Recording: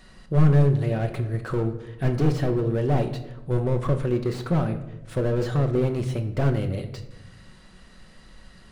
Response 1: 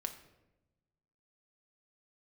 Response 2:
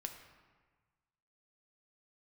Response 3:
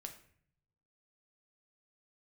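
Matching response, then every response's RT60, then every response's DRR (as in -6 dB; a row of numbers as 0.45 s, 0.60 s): 1; 1.0 s, 1.4 s, 0.60 s; 5.5 dB, 4.5 dB, 4.5 dB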